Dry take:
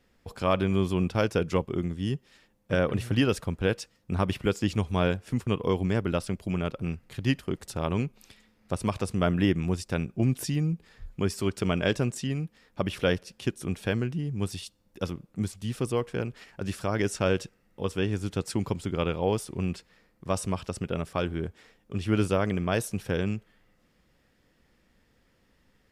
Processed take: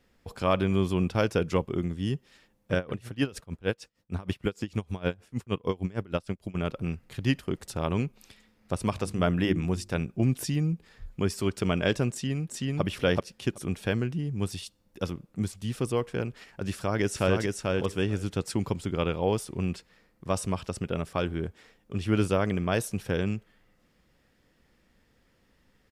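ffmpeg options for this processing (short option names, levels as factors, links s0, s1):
-filter_complex "[0:a]asplit=3[s0][s1][s2];[s0]afade=t=out:st=2.74:d=0.02[s3];[s1]aeval=exprs='val(0)*pow(10,-23*(0.5-0.5*cos(2*PI*6.5*n/s))/20)':c=same,afade=t=in:st=2.74:d=0.02,afade=t=out:st=6.54:d=0.02[s4];[s2]afade=t=in:st=6.54:d=0.02[s5];[s3][s4][s5]amix=inputs=3:normalize=0,asettb=1/sr,asplit=3[s6][s7][s8];[s6]atrim=end=8.904[s9];[s7]atrim=start=8.9:end=10.01,asetpts=PTS-STARTPTS,afade=t=in:d=0.004:c=qsin,afade=t=out:st=1.106:d=0.004:c=qsin,bandreject=f=50:t=h:w=6,bandreject=f=100:t=h:w=6,bandreject=f=150:t=h:w=6,bandreject=f=200:t=h:w=6,bandreject=f=250:t=h:w=6,bandreject=f=300:t=h:w=6,bandreject=f=350:t=h:w=6[s10];[s8]atrim=start=10.006[s11];[s9][s10]acrossfade=d=0.004:c1=hsin:c2=qsin[s12];[s12][s11]acrossfade=d=0.004:c1=qsin:c2=hsin,asplit=2[s13][s14];[s14]afade=t=in:st=12.11:d=0.01,afade=t=out:st=12.82:d=0.01,aecho=0:1:380|760:0.944061|0.0944061[s15];[s13][s15]amix=inputs=2:normalize=0,asplit=2[s16][s17];[s17]afade=t=in:st=16.71:d=0.01,afade=t=out:st=17.41:d=0.01,aecho=0:1:440|880:0.707946|0.0707946[s18];[s16][s18]amix=inputs=2:normalize=0"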